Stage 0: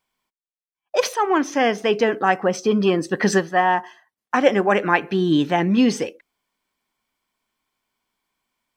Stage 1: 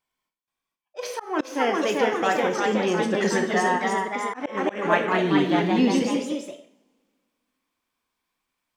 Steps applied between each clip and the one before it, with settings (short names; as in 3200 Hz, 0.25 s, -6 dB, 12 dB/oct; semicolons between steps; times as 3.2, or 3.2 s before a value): two-slope reverb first 0.62 s, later 2.4 s, from -28 dB, DRR 4 dB; echoes that change speed 0.477 s, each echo +1 st, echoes 3; auto swell 0.21 s; gain -6.5 dB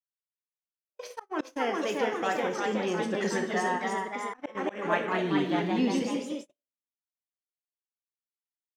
gate -31 dBFS, range -45 dB; gain -6.5 dB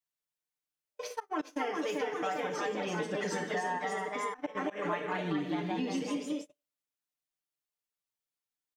comb 6.7 ms, depth 82%; compressor 5:1, threshold -31 dBFS, peak gain reduction 12.5 dB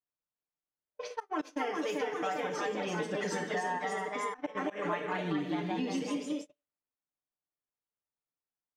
low-pass opened by the level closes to 1200 Hz, open at -31.5 dBFS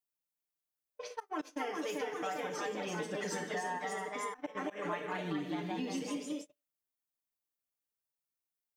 high shelf 8200 Hz +11.5 dB; gain -4 dB